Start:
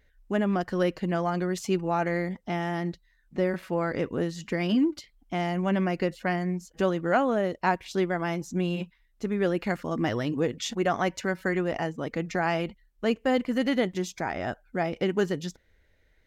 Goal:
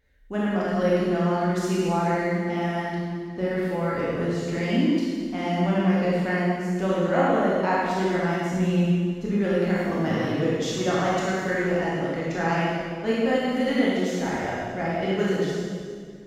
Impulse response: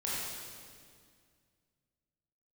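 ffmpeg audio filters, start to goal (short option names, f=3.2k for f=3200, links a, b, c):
-filter_complex "[0:a]asettb=1/sr,asplit=3[a][b][c];[a]atrim=end=8.474[d];[b]atrim=start=8.47:end=9.42,asetpts=PTS-STARTPTS,afade=t=in:d=0.004:c=qsin,afade=t=out:st=0.946:d=0.004:c=qsin,bass=f=250:g=6,treble=f=4k:g=-1[e];[c]atrim=start=9.416[f];[d][e]acrossfade=d=0.004:c1=hsin:c2=qsin[g];[g][f]acrossfade=d=0.004:c1=qsin:c2=hsin[h];[1:a]atrim=start_sample=2205[i];[h][i]afir=irnorm=-1:irlink=0,volume=-2dB"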